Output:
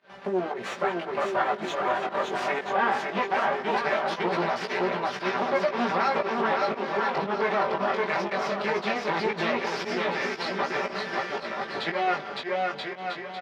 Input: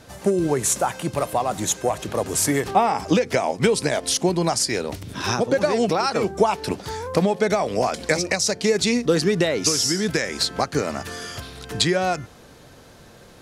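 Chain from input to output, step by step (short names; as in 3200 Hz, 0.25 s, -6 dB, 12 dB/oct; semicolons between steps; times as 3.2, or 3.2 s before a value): minimum comb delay 5.1 ms; bouncing-ball echo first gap 0.56 s, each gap 0.75×, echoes 5; pump 116 bpm, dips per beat 1, -23 dB, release 0.119 s; limiter -13 dBFS, peak gain reduction 8.5 dB; weighting filter A; chorus 0.19 Hz, delay 16 ms, depth 4.6 ms; air absorption 330 m; echo 0.194 s -19.5 dB; Doppler distortion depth 0.11 ms; gain +4.5 dB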